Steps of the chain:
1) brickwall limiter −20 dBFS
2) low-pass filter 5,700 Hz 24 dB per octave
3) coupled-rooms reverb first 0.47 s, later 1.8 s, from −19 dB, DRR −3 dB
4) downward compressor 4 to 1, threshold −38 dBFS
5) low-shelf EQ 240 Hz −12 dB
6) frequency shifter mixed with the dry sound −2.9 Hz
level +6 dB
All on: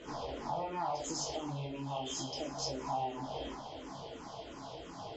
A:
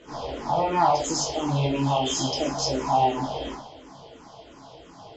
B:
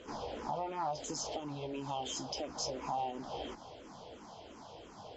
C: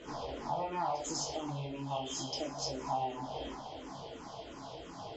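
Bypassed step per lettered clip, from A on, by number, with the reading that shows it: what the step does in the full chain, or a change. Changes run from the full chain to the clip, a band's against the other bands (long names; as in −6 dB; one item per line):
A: 4, average gain reduction 8.5 dB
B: 3, change in momentary loudness spread +4 LU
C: 1, change in momentary loudness spread +1 LU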